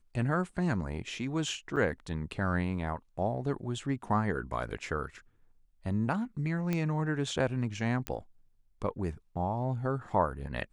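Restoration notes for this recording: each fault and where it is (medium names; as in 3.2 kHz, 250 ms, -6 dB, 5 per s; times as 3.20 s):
1.76–1.77 s: dropout 6.7 ms
6.73 s: pop -18 dBFS
8.07 s: pop -17 dBFS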